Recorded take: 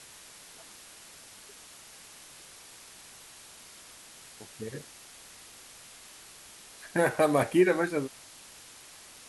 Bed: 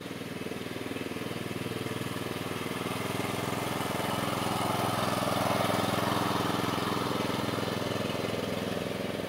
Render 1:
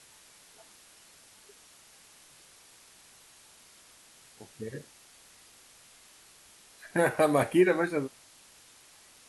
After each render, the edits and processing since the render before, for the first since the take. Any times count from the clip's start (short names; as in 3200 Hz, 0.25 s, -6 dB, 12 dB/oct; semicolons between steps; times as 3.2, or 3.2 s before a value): noise print and reduce 6 dB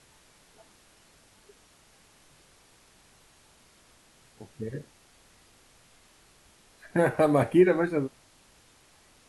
tilt -2 dB/oct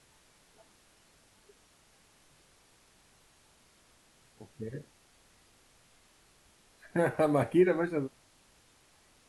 gain -4.5 dB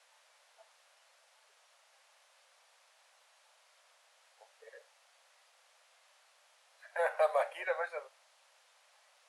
steep high-pass 520 Hz 72 dB/oct; high shelf 8000 Hz -10 dB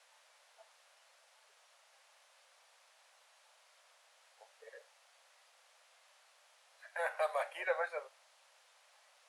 6.89–7.55 HPF 1100 Hz 6 dB/oct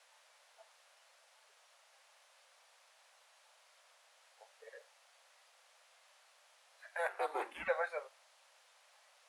7.07–7.67 ring modulator 87 Hz -> 350 Hz